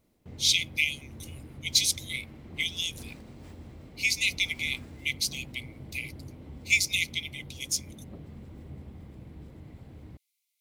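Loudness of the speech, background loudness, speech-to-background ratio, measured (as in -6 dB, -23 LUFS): -28.0 LUFS, -46.5 LUFS, 18.5 dB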